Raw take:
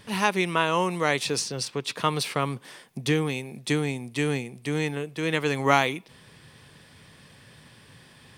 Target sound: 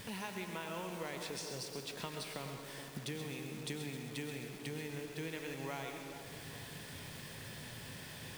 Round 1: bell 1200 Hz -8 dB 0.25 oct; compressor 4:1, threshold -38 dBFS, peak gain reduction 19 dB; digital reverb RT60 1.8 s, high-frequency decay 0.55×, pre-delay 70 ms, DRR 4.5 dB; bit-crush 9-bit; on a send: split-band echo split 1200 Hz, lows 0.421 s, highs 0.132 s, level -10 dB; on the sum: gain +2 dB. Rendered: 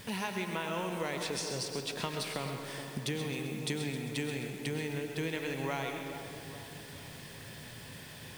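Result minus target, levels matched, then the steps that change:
compressor: peak gain reduction -7 dB
change: compressor 4:1, threshold -47.5 dBFS, peak gain reduction 26 dB

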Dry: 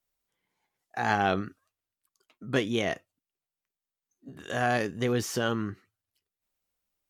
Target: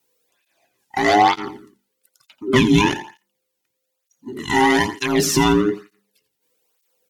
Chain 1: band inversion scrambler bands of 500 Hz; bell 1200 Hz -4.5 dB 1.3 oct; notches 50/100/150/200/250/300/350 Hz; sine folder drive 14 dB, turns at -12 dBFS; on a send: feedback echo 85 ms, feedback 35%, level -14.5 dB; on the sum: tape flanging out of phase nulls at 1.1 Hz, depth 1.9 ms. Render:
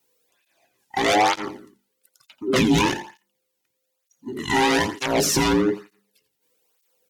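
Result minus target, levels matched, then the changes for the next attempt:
sine folder: distortion +13 dB
change: sine folder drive 14 dB, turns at -4 dBFS

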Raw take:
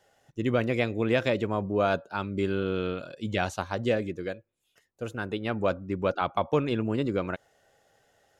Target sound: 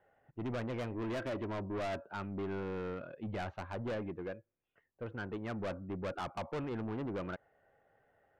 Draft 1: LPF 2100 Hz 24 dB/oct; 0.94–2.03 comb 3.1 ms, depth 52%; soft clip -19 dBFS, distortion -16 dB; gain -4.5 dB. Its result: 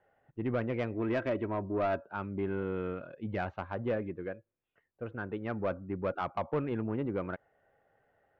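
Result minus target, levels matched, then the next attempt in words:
soft clip: distortion -10 dB
LPF 2100 Hz 24 dB/oct; 0.94–2.03 comb 3.1 ms, depth 52%; soft clip -30 dBFS, distortion -6 dB; gain -4.5 dB

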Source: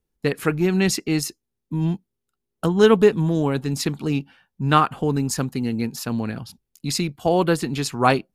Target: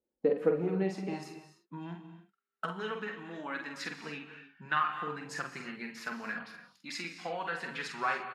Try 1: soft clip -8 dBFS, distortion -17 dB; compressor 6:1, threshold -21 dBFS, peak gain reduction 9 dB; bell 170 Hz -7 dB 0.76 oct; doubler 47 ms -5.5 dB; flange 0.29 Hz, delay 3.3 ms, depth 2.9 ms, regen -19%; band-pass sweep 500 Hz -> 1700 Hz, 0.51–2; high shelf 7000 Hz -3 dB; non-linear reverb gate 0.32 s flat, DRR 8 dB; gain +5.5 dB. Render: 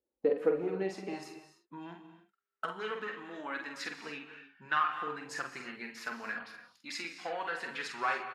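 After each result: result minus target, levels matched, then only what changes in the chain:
125 Hz band -9.0 dB; soft clip: distortion +11 dB
change: bell 170 Hz +4 dB 0.76 oct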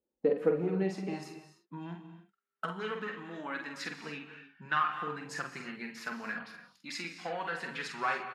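soft clip: distortion +11 dB
change: soft clip -0.5 dBFS, distortion -29 dB

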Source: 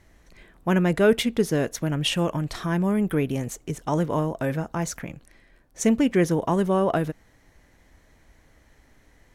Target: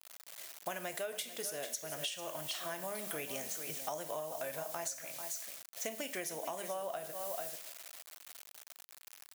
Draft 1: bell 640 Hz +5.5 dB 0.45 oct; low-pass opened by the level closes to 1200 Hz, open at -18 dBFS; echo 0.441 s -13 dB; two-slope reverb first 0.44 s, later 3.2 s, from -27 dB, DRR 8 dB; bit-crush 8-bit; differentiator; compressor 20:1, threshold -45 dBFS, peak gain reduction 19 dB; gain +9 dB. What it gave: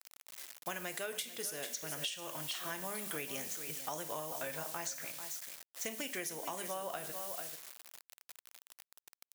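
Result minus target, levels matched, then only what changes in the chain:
500 Hz band -3.5 dB
change: bell 640 Hz +15 dB 0.45 oct

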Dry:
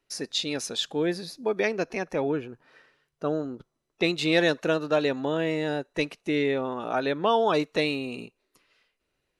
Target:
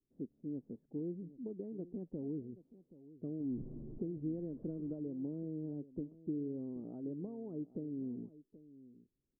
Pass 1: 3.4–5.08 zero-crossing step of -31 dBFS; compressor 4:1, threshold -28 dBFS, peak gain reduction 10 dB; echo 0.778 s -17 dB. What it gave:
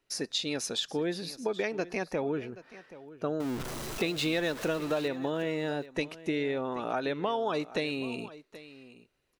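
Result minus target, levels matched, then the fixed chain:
250 Hz band -5.0 dB
3.4–5.08 zero-crossing step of -31 dBFS; compressor 4:1, threshold -28 dBFS, peak gain reduction 10 dB; ladder low-pass 350 Hz, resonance 30%; echo 0.778 s -17 dB

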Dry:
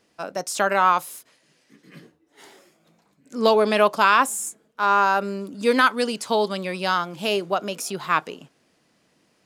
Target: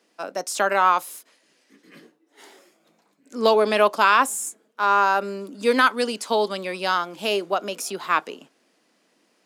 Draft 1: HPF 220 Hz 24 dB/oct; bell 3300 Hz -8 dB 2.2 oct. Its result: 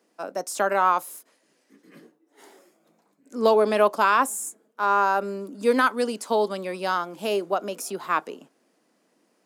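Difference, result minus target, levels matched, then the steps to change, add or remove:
4000 Hz band -5.5 dB
remove: bell 3300 Hz -8 dB 2.2 oct

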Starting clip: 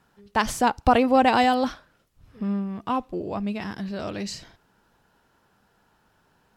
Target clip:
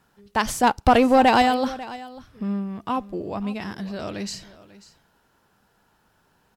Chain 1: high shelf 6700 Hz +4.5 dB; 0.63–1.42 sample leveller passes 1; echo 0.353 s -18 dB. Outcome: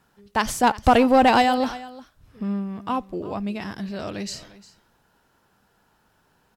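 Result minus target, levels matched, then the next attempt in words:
echo 0.19 s early
high shelf 6700 Hz +4.5 dB; 0.63–1.42 sample leveller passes 1; echo 0.543 s -18 dB

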